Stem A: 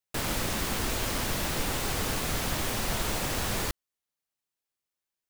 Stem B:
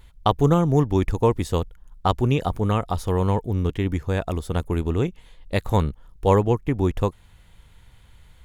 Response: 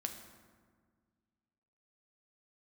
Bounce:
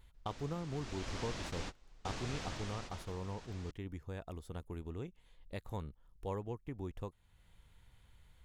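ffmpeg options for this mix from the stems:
-filter_complex "[0:a]lowpass=f=6900:w=0.5412,lowpass=f=6900:w=1.3066,volume=0.251,afade=t=in:st=0.68:d=0.5:silence=0.298538,afade=t=out:st=2.43:d=0.75:silence=0.266073[s0];[1:a]acompressor=threshold=0.00708:ratio=1.5,volume=0.251,asplit=2[s1][s2];[s2]apad=whole_len=233670[s3];[s0][s3]sidechaingate=range=0.0398:threshold=0.00316:ratio=16:detection=peak[s4];[s4][s1]amix=inputs=2:normalize=0"

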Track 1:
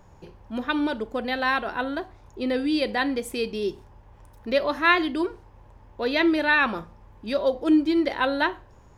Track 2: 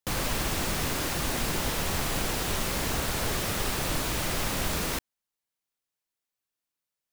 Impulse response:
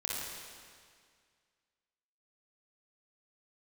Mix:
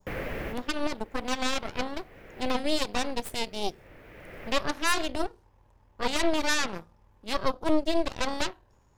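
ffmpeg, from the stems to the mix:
-filter_complex "[0:a]highshelf=f=4000:g=6.5,aeval=exprs='0.631*(cos(1*acos(clip(val(0)/0.631,-1,1)))-cos(1*PI/2))+0.00794*(cos(5*acos(clip(val(0)/0.631,-1,1)))-cos(5*PI/2))+0.0708*(cos(7*acos(clip(val(0)/0.631,-1,1)))-cos(7*PI/2))+0.126*(cos(8*acos(clip(val(0)/0.631,-1,1)))-cos(8*PI/2))':c=same,alimiter=limit=0.237:level=0:latency=1:release=179,volume=1,asplit=2[s0][s1];[1:a]acrossover=split=3800[s2][s3];[s3]acompressor=threshold=0.00562:ratio=4:attack=1:release=60[s4];[s2][s4]amix=inputs=2:normalize=0,equalizer=f=500:t=o:w=1:g=9,equalizer=f=1000:t=o:w=1:g=-6,equalizer=f=2000:t=o:w=1:g=10,equalizer=f=4000:t=o:w=1:g=-9,equalizer=f=8000:t=o:w=1:g=-10,volume=0.531[s5];[s1]apad=whole_len=314249[s6];[s5][s6]sidechaincompress=threshold=0.00708:ratio=16:attack=21:release=891[s7];[s0][s7]amix=inputs=2:normalize=0,adynamicequalizer=threshold=0.00794:dfrequency=1800:dqfactor=0.78:tfrequency=1800:tqfactor=0.78:attack=5:release=100:ratio=0.375:range=2.5:mode=cutabove:tftype=bell"

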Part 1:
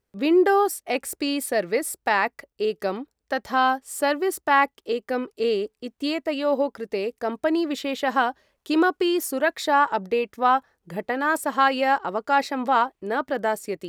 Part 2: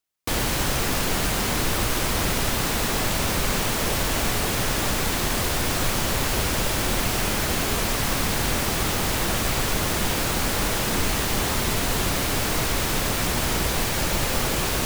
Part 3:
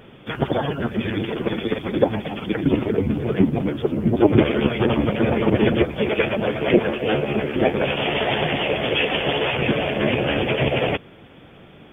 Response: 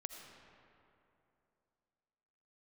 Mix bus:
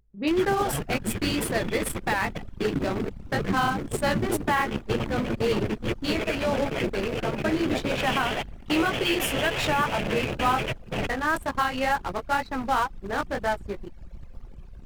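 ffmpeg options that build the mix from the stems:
-filter_complex "[0:a]flanger=delay=15:depth=5:speed=2,acompressor=mode=upward:threshold=0.0126:ratio=2.5,volume=1.41,asplit=2[s0][s1];[1:a]volume=0.316[s2];[2:a]acompressor=threshold=0.0562:ratio=2.5,adelay=100,volume=1.06[s3];[s1]apad=whole_len=530522[s4];[s3][s4]sidechaingate=range=0.2:threshold=0.0141:ratio=16:detection=peak[s5];[s0][s2][s5]amix=inputs=3:normalize=0,anlmdn=158,equalizer=f=480:w=0.63:g=-5,alimiter=limit=0.211:level=0:latency=1:release=157"

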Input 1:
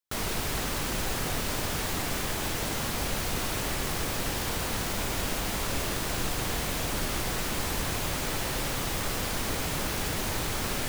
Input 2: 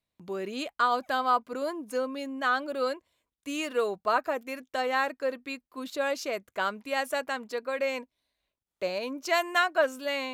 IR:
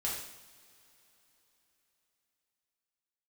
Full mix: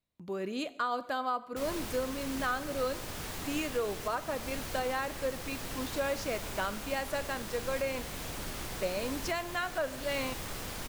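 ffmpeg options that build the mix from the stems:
-filter_complex "[0:a]adelay=1450,volume=0.355[s0];[1:a]lowshelf=f=360:g=5.5,volume=0.596,asplit=2[s1][s2];[s2]volume=0.168[s3];[2:a]atrim=start_sample=2205[s4];[s3][s4]afir=irnorm=-1:irlink=0[s5];[s0][s1][s5]amix=inputs=3:normalize=0,alimiter=limit=0.0794:level=0:latency=1:release=387"

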